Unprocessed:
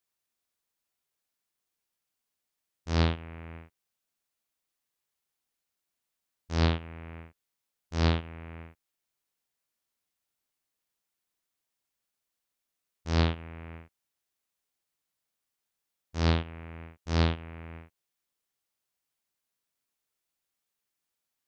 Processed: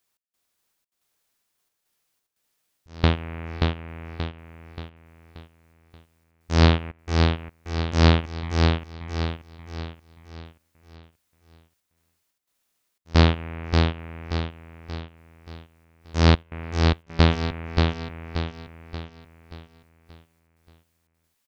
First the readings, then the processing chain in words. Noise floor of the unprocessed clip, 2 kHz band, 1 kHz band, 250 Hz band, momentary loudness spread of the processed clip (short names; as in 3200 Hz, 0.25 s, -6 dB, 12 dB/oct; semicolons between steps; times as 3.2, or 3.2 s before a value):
under -85 dBFS, +10.0 dB, +10.0 dB, +9.5 dB, 20 LU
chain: step gate "x.xxx.xxxx.x" 89 bpm -24 dB; on a send: feedback echo 0.58 s, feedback 44%, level -3.5 dB; on the sum: gain +9 dB